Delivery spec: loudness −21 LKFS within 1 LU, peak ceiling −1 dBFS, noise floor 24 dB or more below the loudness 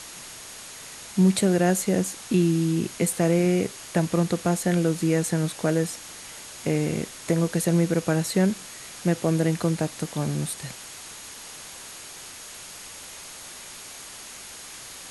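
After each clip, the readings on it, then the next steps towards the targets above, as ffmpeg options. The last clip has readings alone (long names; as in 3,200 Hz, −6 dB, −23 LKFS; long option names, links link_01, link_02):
interfering tone 6,600 Hz; level of the tone −49 dBFS; background noise floor −42 dBFS; target noise floor −49 dBFS; integrated loudness −24.5 LKFS; sample peak −10.0 dBFS; target loudness −21.0 LKFS
→ -af "bandreject=frequency=6600:width=30"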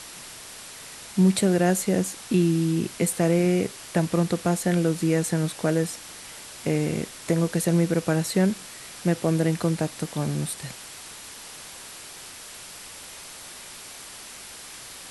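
interfering tone none found; background noise floor −42 dBFS; target noise floor −49 dBFS
→ -af "afftdn=noise_reduction=7:noise_floor=-42"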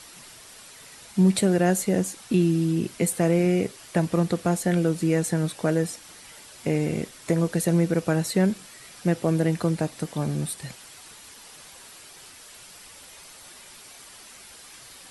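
background noise floor −47 dBFS; target noise floor −49 dBFS
→ -af "afftdn=noise_reduction=6:noise_floor=-47"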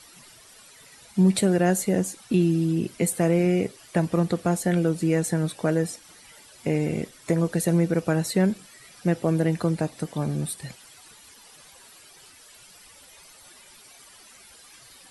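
background noise floor −51 dBFS; integrated loudness −24.5 LKFS; sample peak −10.0 dBFS; target loudness −21.0 LKFS
→ -af "volume=3.5dB"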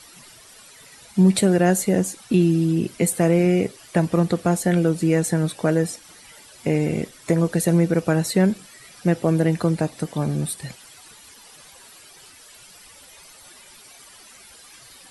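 integrated loudness −21.0 LKFS; sample peak −6.5 dBFS; background noise floor −47 dBFS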